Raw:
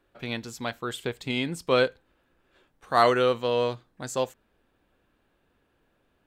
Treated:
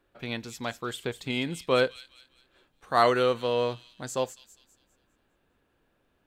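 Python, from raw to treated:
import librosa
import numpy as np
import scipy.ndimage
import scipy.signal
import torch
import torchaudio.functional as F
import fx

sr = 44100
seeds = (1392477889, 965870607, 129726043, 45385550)

y = fx.echo_wet_highpass(x, sr, ms=202, feedback_pct=38, hz=4200.0, wet_db=-8.0)
y = y * librosa.db_to_amplitude(-1.5)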